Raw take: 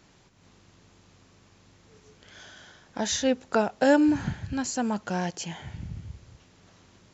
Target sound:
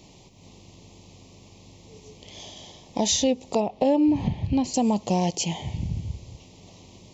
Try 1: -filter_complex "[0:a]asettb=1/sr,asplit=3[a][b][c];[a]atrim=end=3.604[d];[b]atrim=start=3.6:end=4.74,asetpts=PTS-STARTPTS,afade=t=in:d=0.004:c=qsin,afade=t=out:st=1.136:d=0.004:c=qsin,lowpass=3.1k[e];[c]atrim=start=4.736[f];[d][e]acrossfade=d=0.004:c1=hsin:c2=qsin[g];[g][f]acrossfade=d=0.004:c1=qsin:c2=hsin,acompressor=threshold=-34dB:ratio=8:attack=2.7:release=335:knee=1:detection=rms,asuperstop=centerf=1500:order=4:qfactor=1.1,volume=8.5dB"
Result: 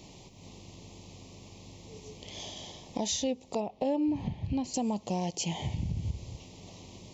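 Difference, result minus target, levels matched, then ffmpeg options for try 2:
compressor: peak gain reduction +8.5 dB
-filter_complex "[0:a]asettb=1/sr,asplit=3[a][b][c];[a]atrim=end=3.604[d];[b]atrim=start=3.6:end=4.74,asetpts=PTS-STARTPTS,afade=t=in:d=0.004:c=qsin,afade=t=out:st=1.136:d=0.004:c=qsin,lowpass=3.1k[e];[c]atrim=start=4.736[f];[d][e]acrossfade=d=0.004:c1=hsin:c2=qsin[g];[g][f]acrossfade=d=0.004:c1=qsin:c2=hsin,acompressor=threshold=-24dB:ratio=8:attack=2.7:release=335:knee=1:detection=rms,asuperstop=centerf=1500:order=4:qfactor=1.1,volume=8.5dB"

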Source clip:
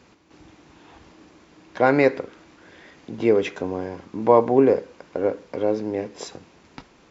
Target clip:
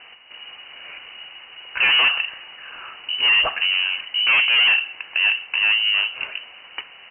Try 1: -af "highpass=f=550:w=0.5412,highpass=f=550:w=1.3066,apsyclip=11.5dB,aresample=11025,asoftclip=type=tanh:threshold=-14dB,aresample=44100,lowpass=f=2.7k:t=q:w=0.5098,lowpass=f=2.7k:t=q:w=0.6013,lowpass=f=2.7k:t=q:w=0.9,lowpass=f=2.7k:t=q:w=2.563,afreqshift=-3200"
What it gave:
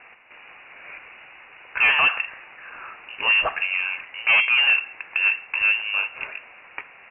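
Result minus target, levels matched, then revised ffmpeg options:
500 Hz band +3.0 dB
-af "highpass=f=210:w=0.5412,highpass=f=210:w=1.3066,apsyclip=11.5dB,aresample=11025,asoftclip=type=tanh:threshold=-14dB,aresample=44100,lowpass=f=2.7k:t=q:w=0.5098,lowpass=f=2.7k:t=q:w=0.6013,lowpass=f=2.7k:t=q:w=0.9,lowpass=f=2.7k:t=q:w=2.563,afreqshift=-3200"

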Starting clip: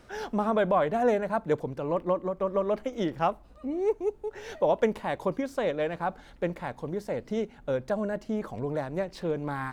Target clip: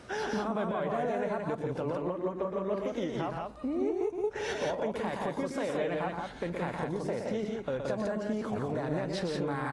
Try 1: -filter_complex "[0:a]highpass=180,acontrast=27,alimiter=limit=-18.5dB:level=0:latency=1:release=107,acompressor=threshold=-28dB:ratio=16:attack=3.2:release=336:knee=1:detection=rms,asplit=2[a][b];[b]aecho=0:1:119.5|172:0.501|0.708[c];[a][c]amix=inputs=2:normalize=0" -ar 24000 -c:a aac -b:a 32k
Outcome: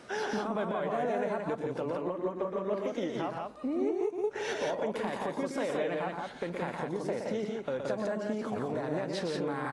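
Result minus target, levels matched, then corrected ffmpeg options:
125 Hz band -3.5 dB
-filter_complex "[0:a]highpass=73,acontrast=27,alimiter=limit=-18.5dB:level=0:latency=1:release=107,acompressor=threshold=-28dB:ratio=16:attack=3.2:release=336:knee=1:detection=rms,asplit=2[a][b];[b]aecho=0:1:119.5|172:0.501|0.708[c];[a][c]amix=inputs=2:normalize=0" -ar 24000 -c:a aac -b:a 32k

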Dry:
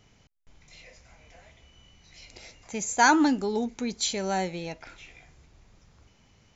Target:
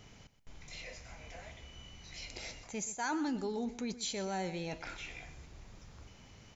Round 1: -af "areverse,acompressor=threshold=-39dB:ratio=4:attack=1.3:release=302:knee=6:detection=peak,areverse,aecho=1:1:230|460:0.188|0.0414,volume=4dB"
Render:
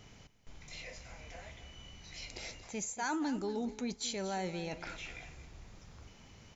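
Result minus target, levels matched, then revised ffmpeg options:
echo 0.105 s late
-af "areverse,acompressor=threshold=-39dB:ratio=4:attack=1.3:release=302:knee=6:detection=peak,areverse,aecho=1:1:125|250:0.188|0.0414,volume=4dB"

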